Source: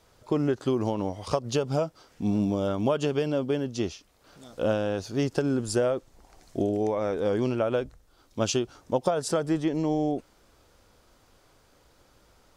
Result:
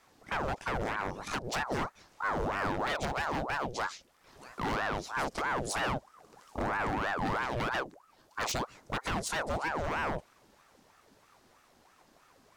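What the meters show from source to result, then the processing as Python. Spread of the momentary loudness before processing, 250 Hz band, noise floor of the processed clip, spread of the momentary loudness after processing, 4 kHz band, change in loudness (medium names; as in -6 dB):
7 LU, -12.0 dB, -65 dBFS, 6 LU, -2.0 dB, -6.0 dB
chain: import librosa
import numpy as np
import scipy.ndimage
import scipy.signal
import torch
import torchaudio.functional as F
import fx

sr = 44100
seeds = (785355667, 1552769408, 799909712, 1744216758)

y = 10.0 ** (-24.0 / 20.0) * (np.abs((x / 10.0 ** (-24.0 / 20.0) + 3.0) % 4.0 - 2.0) - 1.0)
y = fx.ring_lfo(y, sr, carrier_hz=770.0, swing_pct=70, hz=3.1)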